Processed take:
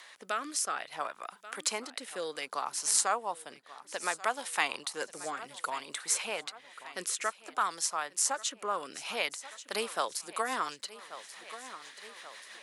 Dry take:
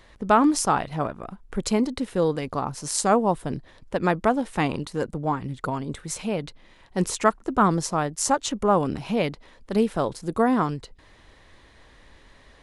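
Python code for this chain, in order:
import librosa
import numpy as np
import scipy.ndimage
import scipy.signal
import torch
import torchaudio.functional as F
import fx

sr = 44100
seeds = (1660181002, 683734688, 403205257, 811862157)

p1 = scipy.signal.sosfilt(scipy.signal.butter(2, 1100.0, 'highpass', fs=sr, output='sos'), x)
p2 = fx.high_shelf(p1, sr, hz=8300.0, db=9.5)
p3 = fx.rider(p2, sr, range_db=4, speed_s=2.0)
p4 = fx.rotary_switch(p3, sr, hz=0.6, then_hz=6.0, switch_at_s=9.22)
p5 = p4 + fx.echo_feedback(p4, sr, ms=1134, feedback_pct=44, wet_db=-19.5, dry=0)
y = fx.band_squash(p5, sr, depth_pct=40)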